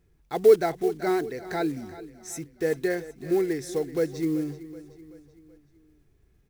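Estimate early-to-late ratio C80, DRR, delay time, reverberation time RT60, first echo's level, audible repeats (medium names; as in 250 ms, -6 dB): no reverb, no reverb, 380 ms, no reverb, -16.0 dB, 4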